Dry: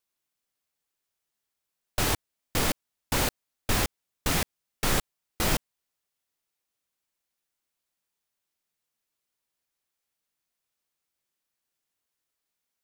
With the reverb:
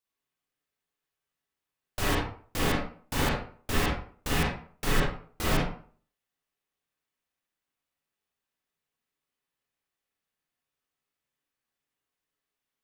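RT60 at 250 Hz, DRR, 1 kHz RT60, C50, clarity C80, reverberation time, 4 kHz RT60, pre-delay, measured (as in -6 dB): 0.45 s, -7.0 dB, 0.45 s, 0.5 dB, 6.0 dB, 0.50 s, 0.30 s, 35 ms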